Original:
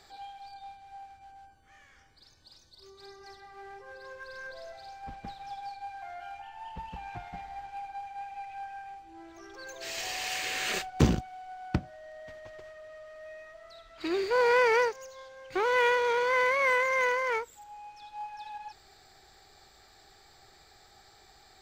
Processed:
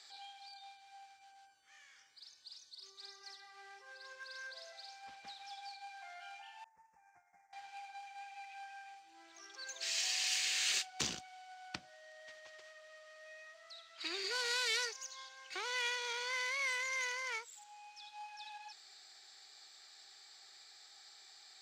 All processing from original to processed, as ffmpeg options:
-filter_complex "[0:a]asettb=1/sr,asplit=3[s0][s1][s2];[s0]atrim=end=6.644[s3];[s1]atrim=start=6.64:end=7.53,asetpts=PTS-STARTPTS,afade=t=in:d=0.004:c=qsin,afade=t=out:st=0.886:d=0.004:c=qsin,agate=range=0.0224:threshold=0.0178:ratio=3:release=100:detection=peak,acompressor=threshold=0.00126:ratio=2:attack=3.2:release=140:knee=1:detection=peak,asuperstop=centerf=3500:order=8:qfactor=1[s4];[s2]atrim=start=7.526[s5];[s3][s4]acrossfade=d=0.004:c1=hsin:c2=qsin[s6];[s6][s5]acrossfade=d=0.004:c1=qsin:c2=hsin,asettb=1/sr,asplit=3[s7][s8][s9];[s7]atrim=end=14.244[s10];[s8]atrim=start=14.24:end=15.54,asetpts=PTS-STARTPTS,afade=t=in:d=0.004:c=qsin,afade=t=out:st=1.296:d=0.004:c=qsin,aecho=1:1:2.7:0.98,atrim=end_sample=57330,asoftclip=type=hard:threshold=0.0841[s11];[s9]atrim=start=15.536[s12];[s10][s11]acrossfade=d=0.004:c1=hsin:c2=qsin[s13];[s13][s12]acrossfade=d=0.004:c1=qsin:c2=hsin,aderivative,acrossover=split=240|3000[s14][s15][s16];[s15]acompressor=threshold=0.00251:ratio=2.5[s17];[s14][s17][s16]amix=inputs=3:normalize=0,lowpass=5700,volume=2.66"

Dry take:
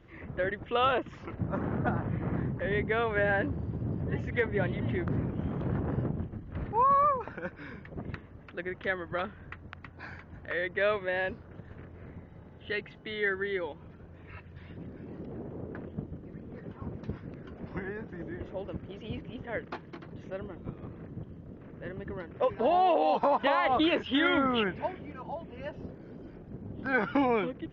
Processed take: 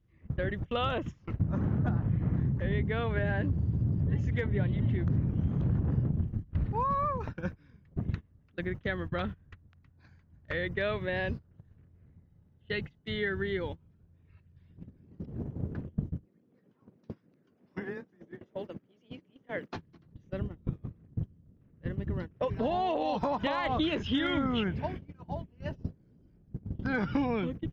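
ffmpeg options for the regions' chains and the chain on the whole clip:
-filter_complex "[0:a]asettb=1/sr,asplit=3[s0][s1][s2];[s0]atrim=end=16.254[s3];[s1]atrim=start=16.25:end=19.75,asetpts=PTS-STARTPTS,afade=t=in:d=0.004:c=qsin,afade=t=out:st=3.496:d=0.004:c=qsin,highpass=270,afreqshift=13[s4];[s2]atrim=start=19.746[s5];[s3][s4]acrossfade=d=0.004:c1=hsin:c2=qsin[s6];[s6][s5]acrossfade=d=0.004:c1=qsin:c2=hsin,agate=range=0.0708:threshold=0.0112:ratio=16:detection=peak,bass=f=250:g=15,treble=f=4000:g=14,acompressor=threshold=0.0447:ratio=2.5,volume=0.841"

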